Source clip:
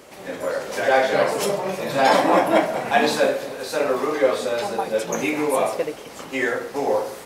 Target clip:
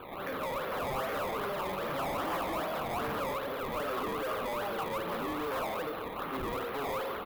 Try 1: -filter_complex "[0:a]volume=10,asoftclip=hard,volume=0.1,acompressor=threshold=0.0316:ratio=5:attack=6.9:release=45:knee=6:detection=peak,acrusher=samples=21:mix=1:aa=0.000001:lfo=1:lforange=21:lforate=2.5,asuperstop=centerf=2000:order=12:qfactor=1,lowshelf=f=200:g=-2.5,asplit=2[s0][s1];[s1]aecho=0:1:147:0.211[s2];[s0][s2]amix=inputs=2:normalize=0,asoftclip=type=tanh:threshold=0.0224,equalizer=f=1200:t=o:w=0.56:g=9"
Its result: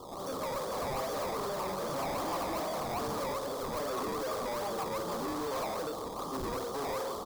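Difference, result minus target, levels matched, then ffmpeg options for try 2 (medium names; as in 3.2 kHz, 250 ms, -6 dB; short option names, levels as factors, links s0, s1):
8 kHz band +8.0 dB
-filter_complex "[0:a]volume=10,asoftclip=hard,volume=0.1,acompressor=threshold=0.0316:ratio=5:attack=6.9:release=45:knee=6:detection=peak,acrusher=samples=21:mix=1:aa=0.000001:lfo=1:lforange=21:lforate=2.5,asuperstop=centerf=7000:order=12:qfactor=1,lowshelf=f=200:g=-2.5,asplit=2[s0][s1];[s1]aecho=0:1:147:0.211[s2];[s0][s2]amix=inputs=2:normalize=0,asoftclip=type=tanh:threshold=0.0224,equalizer=f=1200:t=o:w=0.56:g=9"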